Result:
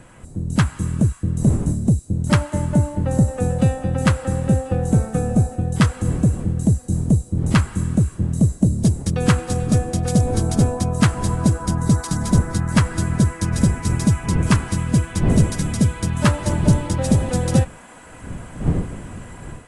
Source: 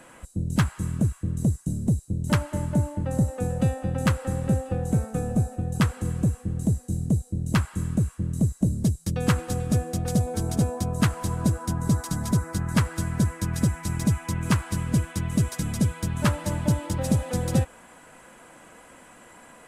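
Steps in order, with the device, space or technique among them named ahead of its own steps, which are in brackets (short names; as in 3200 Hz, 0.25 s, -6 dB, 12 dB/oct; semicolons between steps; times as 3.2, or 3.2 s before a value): smartphone video outdoors (wind noise 180 Hz -35 dBFS; AGC gain up to 7 dB; AAC 64 kbps 24000 Hz)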